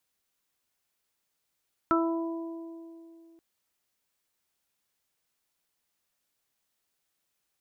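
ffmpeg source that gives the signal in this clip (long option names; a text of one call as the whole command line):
ffmpeg -f lavfi -i "aevalsrc='0.0708*pow(10,-3*t/2.81)*sin(2*PI*331*t)+0.0299*pow(10,-3*t/2.14)*sin(2*PI*662*t)+0.0316*pow(10,-3*t/1.69)*sin(2*PI*993*t)+0.0944*pow(10,-3*t/0.37)*sin(2*PI*1324*t)':duration=1.48:sample_rate=44100" out.wav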